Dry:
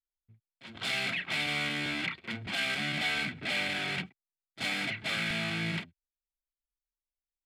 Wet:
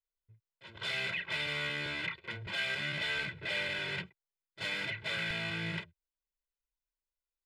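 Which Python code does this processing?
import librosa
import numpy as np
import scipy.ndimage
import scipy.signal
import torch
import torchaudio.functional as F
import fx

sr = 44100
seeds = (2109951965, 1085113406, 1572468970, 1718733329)

y = fx.peak_eq(x, sr, hz=12000.0, db=-9.5, octaves=1.7)
y = y + 0.98 * np.pad(y, (int(2.0 * sr / 1000.0), 0))[:len(y)]
y = y * librosa.db_to_amplitude(-4.5)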